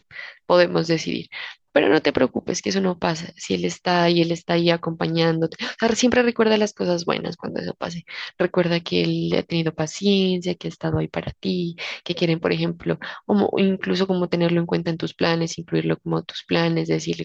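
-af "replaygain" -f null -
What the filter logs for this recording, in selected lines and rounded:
track_gain = +1.6 dB
track_peak = 0.527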